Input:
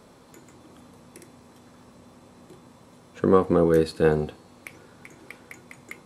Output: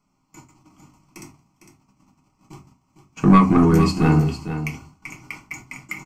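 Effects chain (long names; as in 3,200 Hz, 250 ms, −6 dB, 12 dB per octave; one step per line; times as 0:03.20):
noise gate −47 dBFS, range −26 dB
high-shelf EQ 7,200 Hz +6.5 dB
phaser with its sweep stopped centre 2,500 Hz, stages 8
in parallel at −4 dB: sine wavefolder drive 7 dB, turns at −10.5 dBFS
on the sum: single-tap delay 455 ms −10.5 dB
on a send at −2 dB: convolution reverb RT60 0.25 s, pre-delay 3 ms
on the sum: level −1 dB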